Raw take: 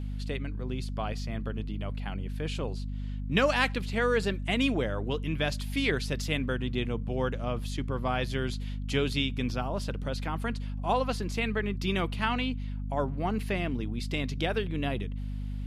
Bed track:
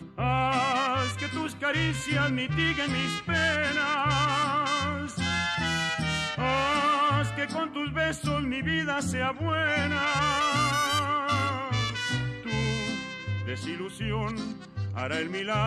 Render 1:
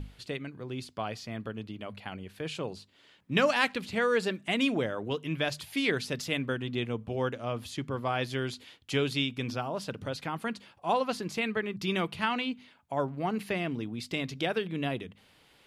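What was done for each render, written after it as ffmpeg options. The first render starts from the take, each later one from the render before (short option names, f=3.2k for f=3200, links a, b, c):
-af "bandreject=f=50:t=h:w=6,bandreject=f=100:t=h:w=6,bandreject=f=150:t=h:w=6,bandreject=f=200:t=h:w=6,bandreject=f=250:t=h:w=6"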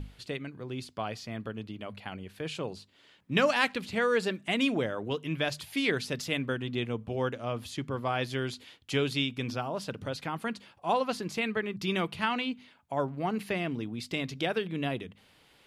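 -af anull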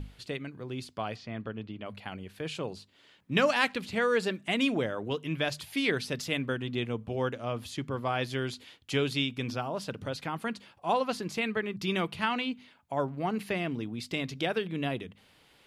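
-filter_complex "[0:a]asettb=1/sr,asplit=3[a][b][c];[a]atrim=end=1.164[d];[b]atrim=start=1.16:end=1.86,asetpts=PTS-STARTPTS,afade=t=in:d=0.004:c=qsin,afade=t=out:st=0.696:d=0.004:c=qsin,lowpass=3.7k[e];[c]atrim=start=1.856[f];[d][e]acrossfade=d=0.004:c1=hsin:c2=qsin[g];[g][f]acrossfade=d=0.004:c1=qsin:c2=hsin,asettb=1/sr,asplit=3[h][i][j];[h]atrim=end=5.754[k];[i]atrim=start=5.75:end=6.17,asetpts=PTS-STARTPTS,afade=t=in:d=0.004:c=qsin,afade=t=out:st=0.416:d=0.004:c=qsin,bandreject=f=7k:w=12[l];[j]atrim=start=6.166[m];[k][l]acrossfade=d=0.004:c1=hsin:c2=qsin[n];[n][m]acrossfade=d=0.004:c1=qsin:c2=hsin"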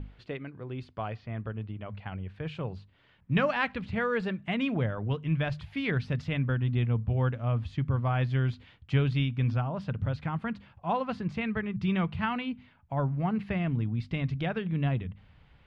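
-af "lowpass=2.2k,asubboost=boost=10:cutoff=110"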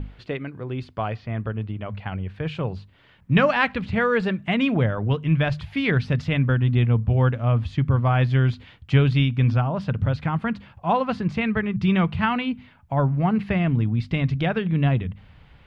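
-af "volume=8dB"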